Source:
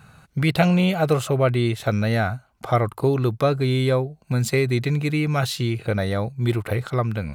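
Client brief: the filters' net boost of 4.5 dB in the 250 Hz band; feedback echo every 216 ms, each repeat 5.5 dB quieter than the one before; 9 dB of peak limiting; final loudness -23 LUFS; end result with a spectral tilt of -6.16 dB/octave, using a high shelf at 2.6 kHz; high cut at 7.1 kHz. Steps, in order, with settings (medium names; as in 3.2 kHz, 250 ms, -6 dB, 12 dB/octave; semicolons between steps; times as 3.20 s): low-pass 7.1 kHz; peaking EQ 250 Hz +6.5 dB; treble shelf 2.6 kHz +5.5 dB; peak limiter -12.5 dBFS; feedback delay 216 ms, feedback 53%, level -5.5 dB; trim -2.5 dB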